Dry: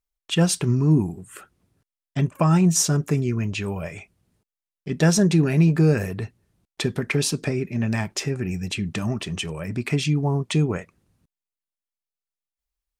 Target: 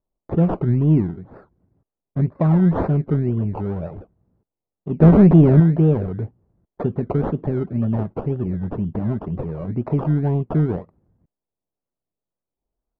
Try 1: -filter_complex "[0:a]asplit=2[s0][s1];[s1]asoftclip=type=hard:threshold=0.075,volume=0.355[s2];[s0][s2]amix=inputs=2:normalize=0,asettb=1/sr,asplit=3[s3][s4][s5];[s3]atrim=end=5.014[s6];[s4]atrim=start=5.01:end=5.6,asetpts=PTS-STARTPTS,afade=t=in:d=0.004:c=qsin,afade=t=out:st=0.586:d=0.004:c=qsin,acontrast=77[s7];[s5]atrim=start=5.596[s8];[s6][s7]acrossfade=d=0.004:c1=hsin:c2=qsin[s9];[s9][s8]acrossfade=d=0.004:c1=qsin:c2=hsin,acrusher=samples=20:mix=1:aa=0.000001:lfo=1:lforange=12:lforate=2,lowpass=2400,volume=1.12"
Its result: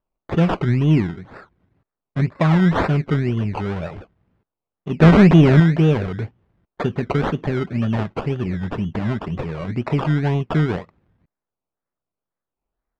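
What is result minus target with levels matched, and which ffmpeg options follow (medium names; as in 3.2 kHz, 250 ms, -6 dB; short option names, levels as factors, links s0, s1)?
2 kHz band +13.5 dB
-filter_complex "[0:a]asplit=2[s0][s1];[s1]asoftclip=type=hard:threshold=0.075,volume=0.355[s2];[s0][s2]amix=inputs=2:normalize=0,asettb=1/sr,asplit=3[s3][s4][s5];[s3]atrim=end=5.014[s6];[s4]atrim=start=5.01:end=5.6,asetpts=PTS-STARTPTS,afade=t=in:d=0.004:c=qsin,afade=t=out:st=0.586:d=0.004:c=qsin,acontrast=77[s7];[s5]atrim=start=5.596[s8];[s6][s7]acrossfade=d=0.004:c1=hsin:c2=qsin[s9];[s9][s8]acrossfade=d=0.004:c1=qsin:c2=hsin,acrusher=samples=20:mix=1:aa=0.000001:lfo=1:lforange=12:lforate=2,lowpass=730,volume=1.12"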